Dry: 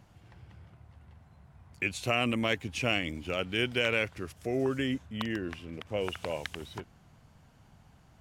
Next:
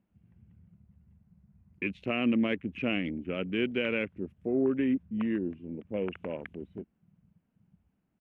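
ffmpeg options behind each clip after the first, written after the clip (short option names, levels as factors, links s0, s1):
-af "afwtdn=0.01,firequalizer=gain_entry='entry(130,0);entry(190,14);entry(750,0);entry(2600,4);entry(4600,-16);entry(11000,-13)':delay=0.05:min_phase=1,volume=0.447"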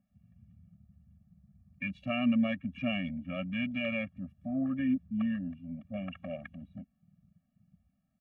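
-af "afftfilt=real='re*eq(mod(floor(b*sr/1024/270),2),0)':imag='im*eq(mod(floor(b*sr/1024/270),2),0)':win_size=1024:overlap=0.75"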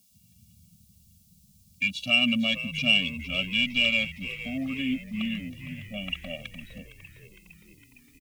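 -filter_complex "[0:a]aexciter=amount=13.1:drive=9.4:freq=2900,asplit=8[s0][s1][s2][s3][s4][s5][s6][s7];[s1]adelay=459,afreqshift=-78,volume=0.2[s8];[s2]adelay=918,afreqshift=-156,volume=0.13[s9];[s3]adelay=1377,afreqshift=-234,volume=0.0841[s10];[s4]adelay=1836,afreqshift=-312,volume=0.055[s11];[s5]adelay=2295,afreqshift=-390,volume=0.0355[s12];[s6]adelay=2754,afreqshift=-468,volume=0.0232[s13];[s7]adelay=3213,afreqshift=-546,volume=0.015[s14];[s0][s8][s9][s10][s11][s12][s13][s14]amix=inputs=8:normalize=0"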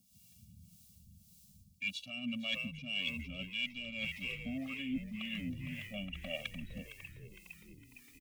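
-filter_complex "[0:a]areverse,acompressor=threshold=0.0224:ratio=16,areverse,acrossover=split=460[s0][s1];[s0]aeval=exprs='val(0)*(1-0.7/2+0.7/2*cos(2*PI*1.8*n/s))':c=same[s2];[s1]aeval=exprs='val(0)*(1-0.7/2-0.7/2*cos(2*PI*1.8*n/s))':c=same[s3];[s2][s3]amix=inputs=2:normalize=0,volume=1.12"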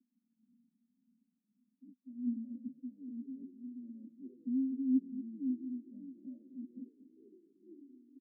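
-af "asuperpass=centerf=300:order=8:qfactor=2.2,aecho=1:1:234:0.224,volume=2.51"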